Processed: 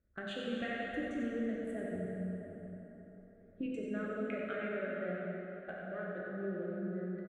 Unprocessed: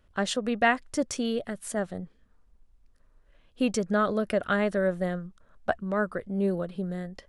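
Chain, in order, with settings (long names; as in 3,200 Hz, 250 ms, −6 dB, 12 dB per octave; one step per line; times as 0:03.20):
adaptive Wiener filter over 15 samples
low-pass filter 3,900 Hz 12 dB per octave
noise reduction from a noise print of the clip's start 9 dB
high-pass filter 58 Hz 6 dB per octave, from 0:03.66 460 Hz
downward compressor, threshold −35 dBFS, peak gain reduction 16.5 dB
hard clipping −23 dBFS, distortion −51 dB
phaser with its sweep stopped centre 2,300 Hz, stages 4
single-tap delay 92 ms −8 dB
dense smooth reverb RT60 4.2 s, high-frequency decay 0.6×, DRR −4.5 dB
level −2 dB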